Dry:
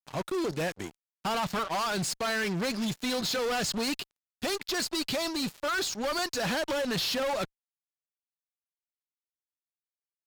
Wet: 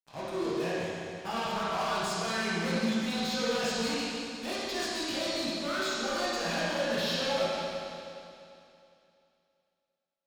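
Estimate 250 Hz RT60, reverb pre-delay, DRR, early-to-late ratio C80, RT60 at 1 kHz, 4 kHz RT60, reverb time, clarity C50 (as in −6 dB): 2.7 s, 13 ms, −10.0 dB, −2.5 dB, 2.7 s, 2.7 s, 2.7 s, −4.5 dB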